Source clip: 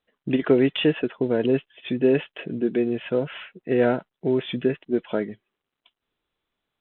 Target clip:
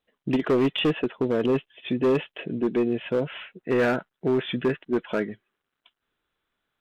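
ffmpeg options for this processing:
-af "asetnsamples=n=441:p=0,asendcmd='3.58 equalizer g 7',equalizer=f=1.5k:w=2.3:g=-2,asoftclip=type=hard:threshold=-17dB"

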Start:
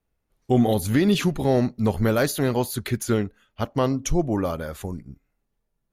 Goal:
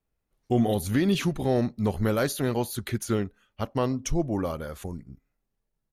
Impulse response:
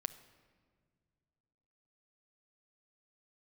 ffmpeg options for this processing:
-af "asetrate=42845,aresample=44100,atempo=1.0293,volume=-4dB"

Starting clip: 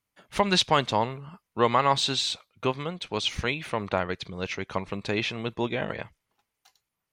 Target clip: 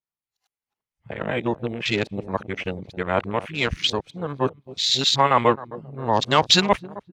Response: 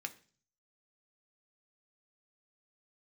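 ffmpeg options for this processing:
-filter_complex "[0:a]areverse,asplit=2[a][b];[b]aeval=exprs='sgn(val(0))*max(abs(val(0))-0.00668,0)':c=same,volume=-10dB[c];[a][c]amix=inputs=2:normalize=0,asplit=2[d][e];[e]adelay=264,lowpass=f=1.2k:p=1,volume=-16dB,asplit=2[f][g];[g]adelay=264,lowpass=f=1.2k:p=1,volume=0.51,asplit=2[h][i];[i]adelay=264,lowpass=f=1.2k:p=1,volume=0.51,asplit=2[j][k];[k]adelay=264,lowpass=f=1.2k:p=1,volume=0.51,asplit=2[l][m];[m]adelay=264,lowpass=f=1.2k:p=1,volume=0.51[n];[d][f][h][j][l][n]amix=inputs=6:normalize=0,afwtdn=0.0224,adynamicequalizer=threshold=0.0126:dfrequency=3900:dqfactor=0.7:tfrequency=3900:tqfactor=0.7:attack=5:release=100:ratio=0.375:range=3:mode=boostabove:tftype=highshelf,volume=2dB"

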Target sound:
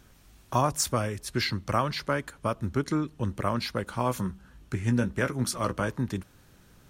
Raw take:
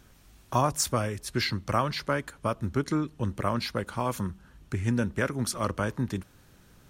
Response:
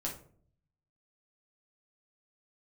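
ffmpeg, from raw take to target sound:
-filter_complex "[0:a]asettb=1/sr,asplit=3[a][b][c];[a]atrim=end=3.874[d];[b]atrim=start=3.87:end=5.89,asetpts=PTS-STARTPTS,afade=t=in:d=0.004:c=qsin,afade=t=out:st=2.016:d=0.004:c=qsin,asplit=2[e][f];[f]adelay=16,volume=-9dB[g];[e][g]amix=inputs=2:normalize=0,atrim=end_sample=89082[h];[c]atrim=start=5.886[i];[d][h]acrossfade=d=0.004:c1=hsin:c2=qsin[j];[j][i]acrossfade=d=0.004:c1=qsin:c2=hsin"

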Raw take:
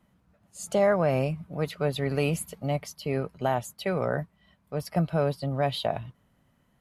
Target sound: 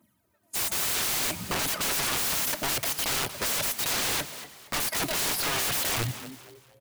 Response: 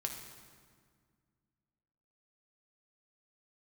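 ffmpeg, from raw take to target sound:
-filter_complex "[0:a]highpass=f=100:w=0.5412,highpass=f=100:w=1.3066,aemphasis=mode=production:type=50fm,agate=range=-15dB:threshold=-57dB:ratio=16:detection=peak,equalizer=f=140:w=0.71:g=2,aecho=1:1:3.2:0.91,aeval=exprs='0.0562*(abs(mod(val(0)/0.0562+3,4)-2)-1)':c=same,aphaser=in_gain=1:out_gain=1:delay=4.8:decay=0.66:speed=0.65:type=triangular,aeval=exprs='(mod(35.5*val(0)+1,2)-1)/35.5':c=same,asplit=4[a][b][c][d];[b]adelay=234,afreqshift=140,volume=-13dB[e];[c]adelay=468,afreqshift=280,volume=-22.1dB[f];[d]adelay=702,afreqshift=420,volume=-31.2dB[g];[a][e][f][g]amix=inputs=4:normalize=0,asplit=2[h][i];[1:a]atrim=start_sample=2205[j];[i][j]afir=irnorm=-1:irlink=0,volume=-17dB[k];[h][k]amix=inputs=2:normalize=0,volume=7dB"

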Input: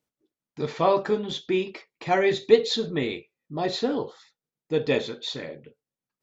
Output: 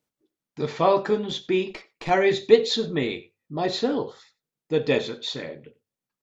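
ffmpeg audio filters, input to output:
-filter_complex "[0:a]bandreject=f=50:t=h:w=6,bandreject=f=100:t=h:w=6,aecho=1:1:92:0.0841,asettb=1/sr,asplit=3[a][b][c];[a]atrim=end=1.704[d];[b]atrim=start=1.7:end=2.1,asetpts=PTS-STARTPTS,afade=t=in:d=0.004:c=qsin,afade=t=out:st=0.396:d=0.004:c=qsin,aeval=exprs='0.112*(cos(1*acos(clip(val(0)/0.112,-1,1)))-cos(1*PI/2))+0.0251*(cos(4*acos(clip(val(0)/0.112,-1,1)))-cos(4*PI/2))':c=same[e];[c]atrim=start=2.096[f];[d][e]acrossfade=d=0.004:c1=hsin:c2=qsin[g];[g][f]acrossfade=d=0.004:c1=qsin:c2=hsin,volume=1.5dB"

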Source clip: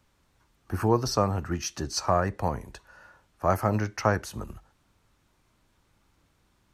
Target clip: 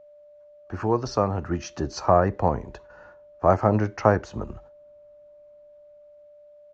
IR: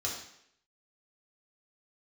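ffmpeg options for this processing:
-filter_complex "[0:a]agate=range=-9dB:threshold=-53dB:ratio=16:detection=peak,bass=f=250:g=-4,treble=f=4k:g=-7,acrossover=split=1000[a][b];[a]dynaudnorm=f=310:g=9:m=11.5dB[c];[c][b]amix=inputs=2:normalize=0,aeval=exprs='val(0)+0.00447*sin(2*PI*590*n/s)':c=same,aresample=16000,aresample=44100,volume=-1dB"

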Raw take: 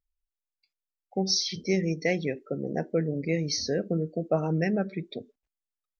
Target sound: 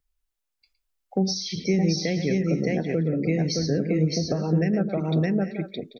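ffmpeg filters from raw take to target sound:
-filter_complex "[0:a]aecho=1:1:112|617|789|840:0.211|0.668|0.126|0.112,alimiter=limit=-16dB:level=0:latency=1:release=454,acrossover=split=300[a][b];[b]acompressor=threshold=-35dB:ratio=6[c];[a][c]amix=inputs=2:normalize=0,volume=7.5dB"

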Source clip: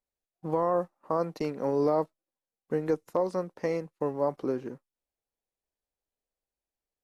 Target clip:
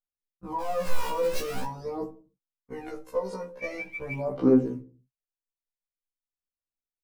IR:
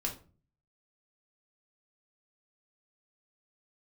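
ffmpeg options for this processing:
-filter_complex "[0:a]asettb=1/sr,asplit=3[a][b][c];[a]atrim=end=0.604[d];[b]atrim=start=0.6:end=1.65,asetpts=PTS-STARTPTS,afade=t=in:d=0.004:c=qsin,afade=t=out:st=1.046:d=0.004:c=qsin,aeval=exprs='val(0)+0.5*0.0299*sgn(val(0))':c=same[e];[c]atrim=start=1.646[f];[d][e]acrossfade=d=0.004:c1=hsin:c2=qsin[g];[g][f]acrossfade=d=0.004:c1=qsin:c2=hsin,agate=range=-22dB:threshold=-46dB:ratio=16:detection=peak,alimiter=level_in=0.5dB:limit=-24dB:level=0:latency=1:release=24,volume=-0.5dB,asettb=1/sr,asplit=3[h][i][j];[h]atrim=end=3.624[k];[i]atrim=start=3.62:end=4.21,asetpts=PTS-STARTPTS,afade=t=in:d=0.004:c=qsin,afade=t=out:st=0.586:d=0.004:c=qsin,aeval=exprs='val(0)+0.0141*sin(2*PI*2300*n/s)':c=same[l];[j]atrim=start=4.206[m];[k][l]acrossfade=d=0.004:c1=hsin:c2=qsin[n];[n][m]acrossfade=d=0.004:c1=qsin:c2=hsin,aphaser=in_gain=1:out_gain=1:delay=2.1:decay=0.74:speed=0.45:type=sinusoidal,asplit=2[o][p];[1:a]atrim=start_sample=2205,afade=t=out:st=0.36:d=0.01,atrim=end_sample=16317[q];[p][q]afir=irnorm=-1:irlink=0,volume=-1dB[r];[o][r]amix=inputs=2:normalize=0,afftfilt=real='re*1.73*eq(mod(b,3),0)':imag='im*1.73*eq(mod(b,3),0)':win_size=2048:overlap=0.75,volume=-4.5dB"

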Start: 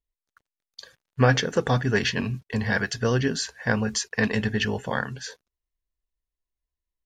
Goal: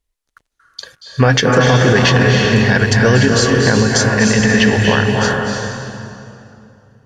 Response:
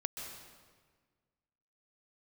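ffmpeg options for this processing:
-filter_complex "[1:a]atrim=start_sample=2205,asetrate=23373,aresample=44100[a];[0:a][a]afir=irnorm=-1:irlink=0,alimiter=level_in=11dB:limit=-1dB:release=50:level=0:latency=1,volume=-1dB"

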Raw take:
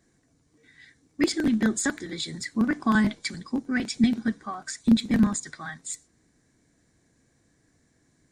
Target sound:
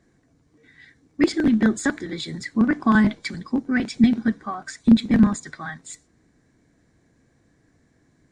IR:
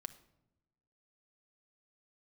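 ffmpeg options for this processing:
-af "lowpass=f=2.5k:p=1,volume=5dB"

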